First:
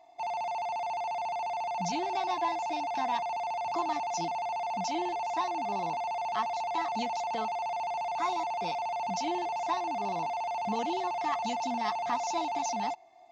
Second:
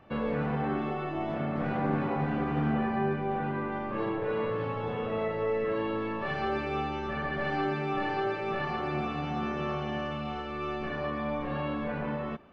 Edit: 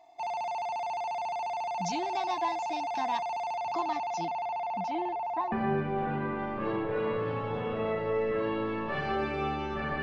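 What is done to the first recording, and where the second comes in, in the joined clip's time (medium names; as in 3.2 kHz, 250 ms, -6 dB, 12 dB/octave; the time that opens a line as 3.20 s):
first
3.55–5.52 s: low-pass 6.7 kHz -> 1.4 kHz
5.52 s: go over to second from 2.85 s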